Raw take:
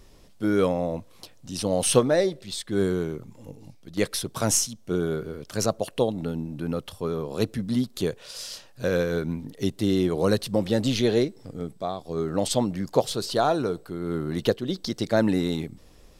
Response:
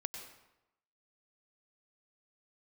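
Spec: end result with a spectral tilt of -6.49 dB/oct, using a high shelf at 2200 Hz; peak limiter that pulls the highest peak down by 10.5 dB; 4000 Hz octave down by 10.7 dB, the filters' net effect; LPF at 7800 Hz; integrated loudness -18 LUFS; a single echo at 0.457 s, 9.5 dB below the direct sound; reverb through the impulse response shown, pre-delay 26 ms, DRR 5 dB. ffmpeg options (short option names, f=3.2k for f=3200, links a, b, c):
-filter_complex "[0:a]lowpass=7.8k,highshelf=f=2.2k:g=-5,equalizer=f=4k:t=o:g=-8.5,alimiter=limit=-15dB:level=0:latency=1,aecho=1:1:457:0.335,asplit=2[a][b];[1:a]atrim=start_sample=2205,adelay=26[c];[b][c]afir=irnorm=-1:irlink=0,volume=-4.5dB[d];[a][d]amix=inputs=2:normalize=0,volume=9.5dB"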